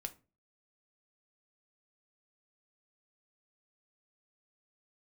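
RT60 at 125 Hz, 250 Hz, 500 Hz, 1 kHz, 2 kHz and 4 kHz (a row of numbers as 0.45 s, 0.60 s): 0.45 s, 0.45 s, 0.35 s, 0.30 s, 0.25 s, 0.20 s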